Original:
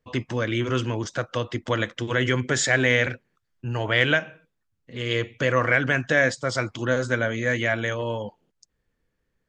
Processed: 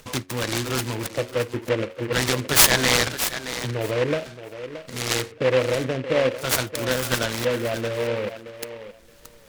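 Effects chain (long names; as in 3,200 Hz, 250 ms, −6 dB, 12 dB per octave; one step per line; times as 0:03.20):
high-shelf EQ 2,500 Hz +11 dB
hum removal 91.62 Hz, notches 9
in parallel at 0 dB: upward compression, threshold −20 dBFS
on the sum: auto-filter low-pass square 0.47 Hz 510–6,700 Hz
on a send: feedback echo with a high-pass in the loop 624 ms, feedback 15%, high-pass 200 Hz, level −11 dB
on the sum: short delay modulated by noise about 1,700 Hz, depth 0.1 ms
level −9 dB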